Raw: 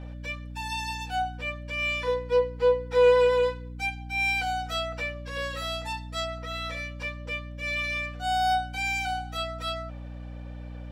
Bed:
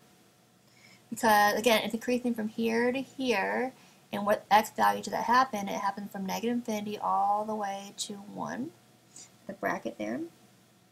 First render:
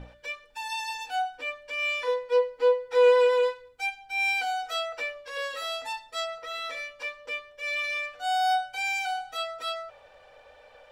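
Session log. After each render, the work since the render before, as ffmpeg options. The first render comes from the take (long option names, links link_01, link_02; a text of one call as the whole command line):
ffmpeg -i in.wav -af "bandreject=frequency=60:width_type=h:width=6,bandreject=frequency=120:width_type=h:width=6,bandreject=frequency=180:width_type=h:width=6,bandreject=frequency=240:width_type=h:width=6,bandreject=frequency=300:width_type=h:width=6,bandreject=frequency=360:width_type=h:width=6" out.wav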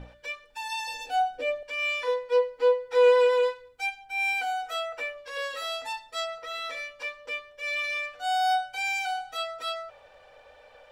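ffmpeg -i in.wav -filter_complex "[0:a]asettb=1/sr,asplit=3[link_01][link_02][link_03];[link_01]atrim=end=0.874[link_04];[link_02]atrim=start=0.87:end=1.63,asetpts=PTS-STARTPTS,afade=type=in:duration=0.004:curve=qsin,afade=type=out:start_time=0.756:duration=0.004:curve=qsin,lowshelf=frequency=750:width_type=q:width=3:gain=7[link_05];[link_03]atrim=start=1.626[link_06];[link_04][link_05]acrossfade=duration=0.004:curve1=hsin:curve2=qsin[link_07];[link_07][link_06]acrossfade=duration=0.004:curve1=qsin:curve2=hsin,asettb=1/sr,asplit=3[link_08][link_09][link_10];[link_08]atrim=end=4.044[link_11];[link_09]atrim=start=4.04:end=5.18,asetpts=PTS-STARTPTS,afade=type=in:duration=0.004:curve=qsin,afade=type=out:start_time=1.136:duration=0.004:curve=qsin,equalizer=frequency=4700:width=1.5:gain=-6.5[link_12];[link_10]atrim=start=5.176[link_13];[link_11][link_12]acrossfade=duration=0.004:curve1=hsin:curve2=qsin[link_14];[link_14][link_13]acrossfade=duration=0.004:curve1=qsin:curve2=hsin" out.wav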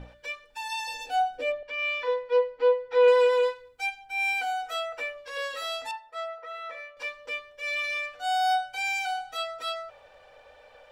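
ffmpeg -i in.wav -filter_complex "[0:a]asettb=1/sr,asplit=3[link_01][link_02][link_03];[link_01]atrim=end=1.524[link_04];[link_02]atrim=start=1.52:end=3.08,asetpts=PTS-STARTPTS,afade=type=in:duration=0.004:curve=qsin,afade=type=out:start_time=1.556:duration=0.004:curve=qsin,lowpass=3700[link_05];[link_03]atrim=start=3.076[link_06];[link_04][link_05]acrossfade=duration=0.004:curve1=hsin:curve2=qsin[link_07];[link_07][link_06]acrossfade=duration=0.004:curve1=qsin:curve2=hsin,asettb=1/sr,asplit=3[link_08][link_09][link_10];[link_08]atrim=end=5.914[link_11];[link_09]atrim=start=5.91:end=6.97,asetpts=PTS-STARTPTS,afade=type=in:duration=0.004:curve=qsin,afade=type=out:start_time=1.056:duration=0.004:curve=qsin,acrossover=split=390 2100:gain=0.141 1 0.141[link_12][link_13][link_14];[link_12][link_13][link_14]amix=inputs=3:normalize=0[link_15];[link_10]atrim=start=6.966[link_16];[link_11][link_15]acrossfade=duration=0.004:curve1=hsin:curve2=qsin[link_17];[link_17][link_16]acrossfade=duration=0.004:curve1=qsin:curve2=hsin" out.wav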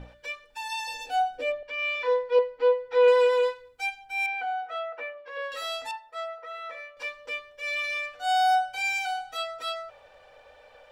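ffmpeg -i in.wav -filter_complex "[0:a]asettb=1/sr,asplit=3[link_01][link_02][link_03];[link_01]atrim=end=1.934[link_04];[link_02]atrim=start=1.93:end=2.39,asetpts=PTS-STARTPTS,afade=type=in:duration=0.004:curve=qsin,afade=type=out:start_time=0.456:duration=0.004:curve=qsin,asplit=2[link_05][link_06];[link_06]adelay=26,volume=-5dB[link_07];[link_05][link_07]amix=inputs=2:normalize=0,atrim=end_sample=20286[link_08];[link_03]atrim=start=2.386[link_09];[link_04][link_08]acrossfade=duration=0.004:curve1=hsin:curve2=qsin[link_10];[link_10][link_09]acrossfade=duration=0.004:curve1=qsin:curve2=hsin,asettb=1/sr,asplit=3[link_11][link_12][link_13];[link_11]atrim=end=4.264[link_14];[link_12]atrim=start=4.26:end=5.52,asetpts=PTS-STARTPTS,afade=type=in:duration=0.004:curve=qsin,afade=type=out:start_time=1.256:duration=0.004:curve=qsin,highpass=270,lowpass=2000[link_15];[link_13]atrim=start=5.516[link_16];[link_14][link_15]acrossfade=duration=0.004:curve1=hsin:curve2=qsin[link_17];[link_17][link_16]acrossfade=duration=0.004:curve1=qsin:curve2=hsin,asettb=1/sr,asplit=3[link_18][link_19][link_20];[link_18]atrim=end=8.174[link_21];[link_19]atrim=start=8.17:end=8.98,asetpts=PTS-STARTPTS,afade=type=in:duration=0.004:curve=qsin,afade=type=out:start_time=0.806:duration=0.004:curve=qsin,asplit=2[link_22][link_23];[link_23]adelay=39,volume=-8dB[link_24];[link_22][link_24]amix=inputs=2:normalize=0,atrim=end_sample=35721[link_25];[link_20]atrim=start=8.976[link_26];[link_21][link_25]acrossfade=duration=0.004:curve1=hsin:curve2=qsin[link_27];[link_27][link_26]acrossfade=duration=0.004:curve1=qsin:curve2=hsin" out.wav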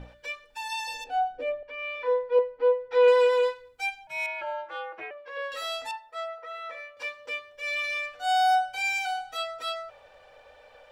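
ffmpeg -i in.wav -filter_complex "[0:a]asettb=1/sr,asplit=3[link_01][link_02][link_03];[link_01]atrim=end=1.044[link_04];[link_02]atrim=start=1.04:end=2.91,asetpts=PTS-STARTPTS,afade=type=in:duration=0.004:curve=qsin,afade=type=out:start_time=1.866:duration=0.004:curve=qsin,lowpass=frequency=1300:poles=1[link_05];[link_03]atrim=start=2.906[link_06];[link_04][link_05]acrossfade=duration=0.004:curve1=hsin:curve2=qsin[link_07];[link_07][link_06]acrossfade=duration=0.004:curve1=qsin:curve2=hsin,asettb=1/sr,asplit=3[link_08][link_09][link_10];[link_08]atrim=end=4.074[link_11];[link_09]atrim=start=4.07:end=5.11,asetpts=PTS-STARTPTS,afade=type=in:duration=0.004:curve=qsin,afade=type=out:start_time=1.036:duration=0.004:curve=qsin,aeval=exprs='val(0)*sin(2*PI*150*n/s)':channel_layout=same[link_12];[link_10]atrim=start=5.106[link_13];[link_11][link_12]acrossfade=duration=0.004:curve1=hsin:curve2=qsin[link_14];[link_14][link_13]acrossfade=duration=0.004:curve1=qsin:curve2=hsin,asettb=1/sr,asplit=3[link_15][link_16][link_17];[link_15]atrim=end=6.934[link_18];[link_16]atrim=start=6.93:end=7.53,asetpts=PTS-STARTPTS,afade=type=in:duration=0.004:curve=qsin,afade=type=out:start_time=0.596:duration=0.004:curve=qsin,highpass=80[link_19];[link_17]atrim=start=7.526[link_20];[link_18][link_19]acrossfade=duration=0.004:curve1=hsin:curve2=qsin[link_21];[link_21][link_20]acrossfade=duration=0.004:curve1=qsin:curve2=hsin" out.wav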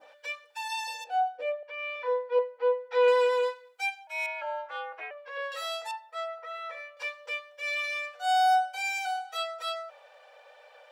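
ffmpeg -i in.wav -af "highpass=frequency=510:width=0.5412,highpass=frequency=510:width=1.3066,adynamicequalizer=threshold=0.00794:dfrequency=2700:dqfactor=0.8:tfrequency=2700:tqfactor=0.8:attack=5:release=100:ratio=0.375:range=2.5:mode=cutabove:tftype=bell" out.wav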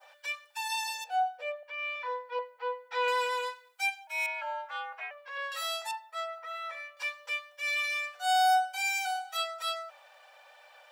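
ffmpeg -i in.wav -af "highpass=frequency=680:width=0.5412,highpass=frequency=680:width=1.3066,highshelf=frequency=7700:gain=10" out.wav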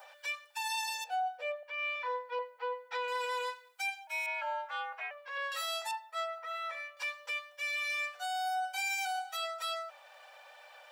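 ffmpeg -i in.wav -af "alimiter=level_in=4dB:limit=-24dB:level=0:latency=1:release=26,volume=-4dB,acompressor=mode=upward:threshold=-50dB:ratio=2.5" out.wav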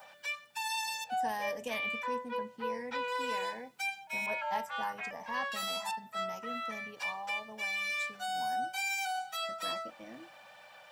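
ffmpeg -i in.wav -i bed.wav -filter_complex "[1:a]volume=-15dB[link_01];[0:a][link_01]amix=inputs=2:normalize=0" out.wav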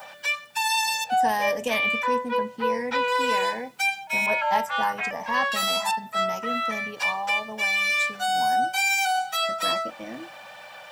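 ffmpeg -i in.wav -af "volume=11.5dB" out.wav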